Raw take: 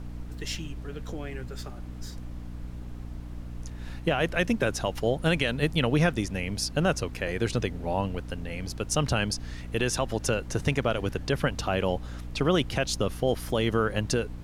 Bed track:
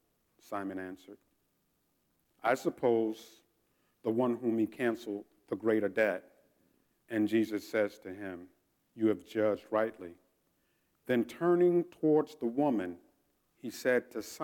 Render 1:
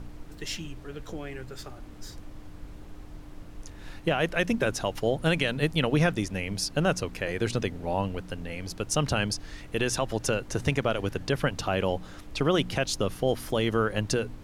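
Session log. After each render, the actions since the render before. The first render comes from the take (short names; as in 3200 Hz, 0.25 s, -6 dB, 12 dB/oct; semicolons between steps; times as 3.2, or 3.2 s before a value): de-hum 60 Hz, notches 4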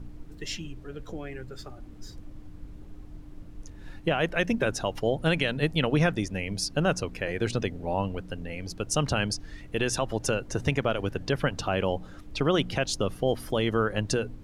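denoiser 8 dB, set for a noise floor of -45 dBFS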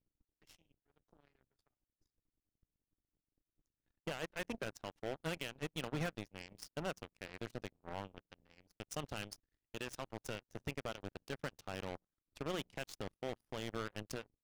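power-law curve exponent 3; overloaded stage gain 31.5 dB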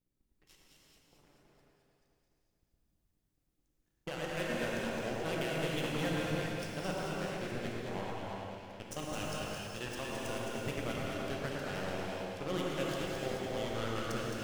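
on a send: echo with dull and thin repeats by turns 0.108 s, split 1800 Hz, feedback 78%, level -2.5 dB; on the sum: non-linear reverb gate 0.47 s flat, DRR -3 dB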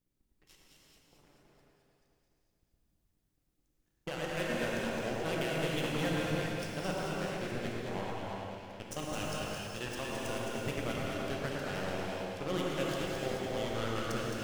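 gain +1.5 dB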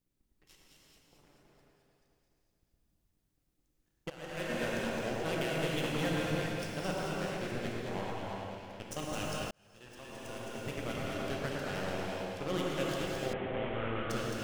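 4.1–4.82 fade in equal-power, from -15 dB; 9.51–11.26 fade in; 13.33–14.1 CVSD 16 kbps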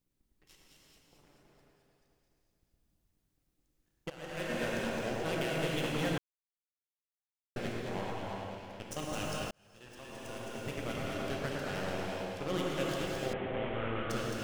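6.18–7.56 mute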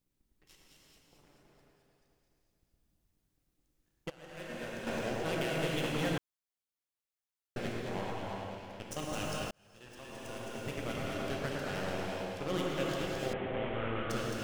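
4.11–4.87 gain -7 dB; 12.66–13.2 decimation joined by straight lines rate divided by 2×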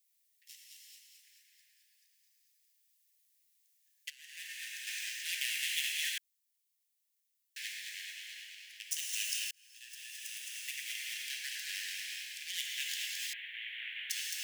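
steep high-pass 1700 Hz 96 dB/oct; tilt +3.5 dB/oct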